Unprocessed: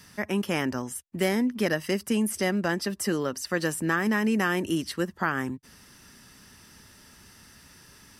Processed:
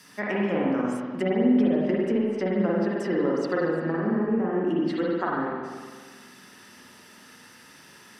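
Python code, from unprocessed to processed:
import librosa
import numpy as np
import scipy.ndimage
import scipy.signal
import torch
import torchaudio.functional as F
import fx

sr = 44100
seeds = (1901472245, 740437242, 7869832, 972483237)

y = scipy.signal.sosfilt(scipy.signal.butter(2, 220.0, 'highpass', fs=sr, output='sos'), x)
y = fx.env_lowpass_down(y, sr, base_hz=530.0, full_db=-22.5)
y = fx.rev_spring(y, sr, rt60_s=1.6, pass_ms=(44, 48), chirp_ms=30, drr_db=-4.5)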